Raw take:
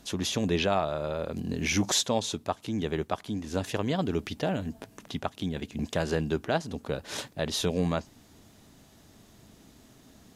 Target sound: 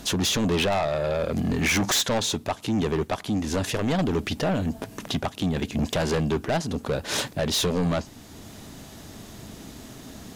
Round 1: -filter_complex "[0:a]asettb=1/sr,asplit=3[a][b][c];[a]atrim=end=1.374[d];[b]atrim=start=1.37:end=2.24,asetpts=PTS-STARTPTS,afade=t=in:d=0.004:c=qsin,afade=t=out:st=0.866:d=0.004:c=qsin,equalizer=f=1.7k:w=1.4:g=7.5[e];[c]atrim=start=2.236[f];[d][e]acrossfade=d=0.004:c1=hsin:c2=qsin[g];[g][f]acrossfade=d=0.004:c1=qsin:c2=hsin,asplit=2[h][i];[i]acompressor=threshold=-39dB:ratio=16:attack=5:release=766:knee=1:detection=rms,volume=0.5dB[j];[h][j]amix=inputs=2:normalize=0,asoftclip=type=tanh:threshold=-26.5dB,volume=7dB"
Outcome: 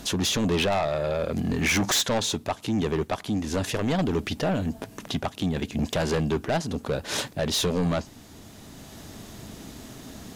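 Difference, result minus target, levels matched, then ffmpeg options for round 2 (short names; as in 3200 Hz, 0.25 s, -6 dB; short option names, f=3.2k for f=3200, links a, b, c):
compressor: peak gain reduction +9.5 dB
-filter_complex "[0:a]asettb=1/sr,asplit=3[a][b][c];[a]atrim=end=1.374[d];[b]atrim=start=1.37:end=2.24,asetpts=PTS-STARTPTS,afade=t=in:d=0.004:c=qsin,afade=t=out:st=0.866:d=0.004:c=qsin,equalizer=f=1.7k:w=1.4:g=7.5[e];[c]atrim=start=2.236[f];[d][e]acrossfade=d=0.004:c1=hsin:c2=qsin[g];[g][f]acrossfade=d=0.004:c1=qsin:c2=hsin,asplit=2[h][i];[i]acompressor=threshold=-29dB:ratio=16:attack=5:release=766:knee=1:detection=rms,volume=0.5dB[j];[h][j]amix=inputs=2:normalize=0,asoftclip=type=tanh:threshold=-26.5dB,volume=7dB"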